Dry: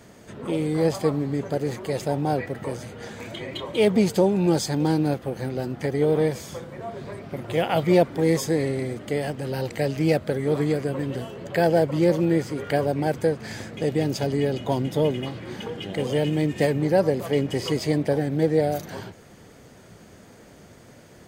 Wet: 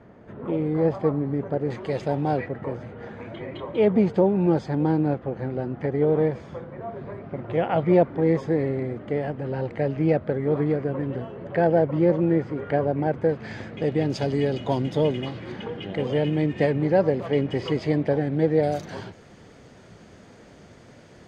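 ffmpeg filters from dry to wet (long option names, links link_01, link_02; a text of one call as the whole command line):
ffmpeg -i in.wav -af "asetnsamples=nb_out_samples=441:pad=0,asendcmd='1.7 lowpass f 3300;2.47 lowpass f 1700;13.29 lowpass f 3000;14.1 lowpass f 5000;15.52 lowpass f 2900;18.63 lowpass f 5800',lowpass=1500" out.wav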